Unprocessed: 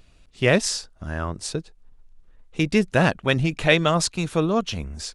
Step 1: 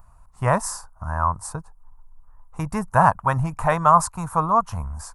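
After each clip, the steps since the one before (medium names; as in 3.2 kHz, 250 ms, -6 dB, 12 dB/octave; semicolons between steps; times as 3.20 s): FFT filter 110 Hz 0 dB, 370 Hz -19 dB, 560 Hz -8 dB, 990 Hz +13 dB, 2.2 kHz -17 dB, 3.4 kHz -27 dB, 11 kHz +3 dB; trim +4 dB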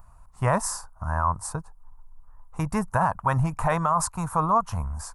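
peak limiter -12 dBFS, peak gain reduction 10.5 dB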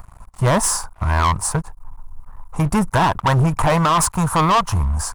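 waveshaping leveller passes 3; trim +1.5 dB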